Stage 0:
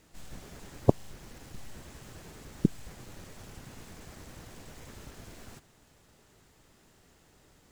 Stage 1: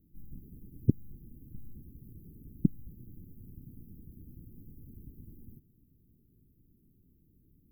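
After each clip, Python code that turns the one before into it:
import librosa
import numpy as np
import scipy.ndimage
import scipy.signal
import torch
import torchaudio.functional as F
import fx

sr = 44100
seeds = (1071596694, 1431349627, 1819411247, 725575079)

y = scipy.signal.sosfilt(scipy.signal.cheby2(4, 50, [720.0, 7400.0], 'bandstop', fs=sr, output='sos'), x)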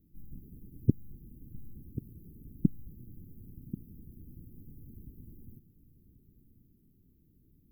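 y = x + 10.0 ** (-13.5 / 20.0) * np.pad(x, (int(1086 * sr / 1000.0), 0))[:len(x)]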